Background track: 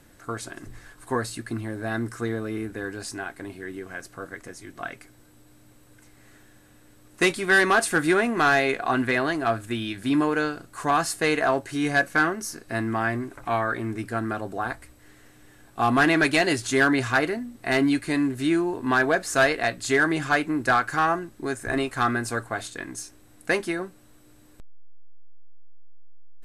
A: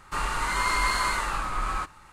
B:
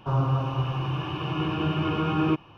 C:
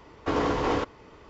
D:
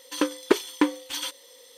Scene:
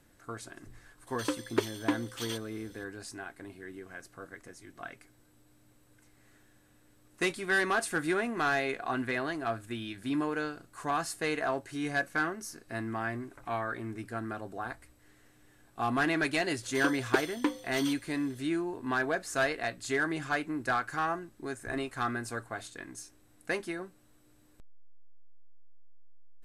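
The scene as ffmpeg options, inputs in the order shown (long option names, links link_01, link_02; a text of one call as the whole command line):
ffmpeg -i bed.wav -i cue0.wav -i cue1.wav -i cue2.wav -i cue3.wav -filter_complex "[4:a]asplit=2[link_01][link_02];[0:a]volume=-9dB[link_03];[link_01]atrim=end=1.77,asetpts=PTS-STARTPTS,volume=-8dB,afade=type=in:duration=0.004:curve=hsin,afade=type=out:start_time=1.766:duration=0.004:curve=hsin,adelay=1070[link_04];[link_02]atrim=end=1.77,asetpts=PTS-STARTPTS,volume=-8dB,afade=type=in:duration=0.004:curve=hsin,afade=type=out:start_time=1.766:duration=0.004:curve=hsin,adelay=16630[link_05];[link_03][link_04][link_05]amix=inputs=3:normalize=0" out.wav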